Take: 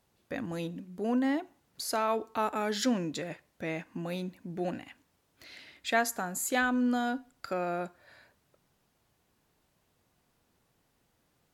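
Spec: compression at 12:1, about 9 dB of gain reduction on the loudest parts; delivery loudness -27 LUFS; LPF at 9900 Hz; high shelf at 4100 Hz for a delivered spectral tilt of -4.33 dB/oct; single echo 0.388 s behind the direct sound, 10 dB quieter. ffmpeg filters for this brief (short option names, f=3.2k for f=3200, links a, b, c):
-af "lowpass=9.9k,highshelf=f=4.1k:g=-3.5,acompressor=threshold=-32dB:ratio=12,aecho=1:1:388:0.316,volume=11dB"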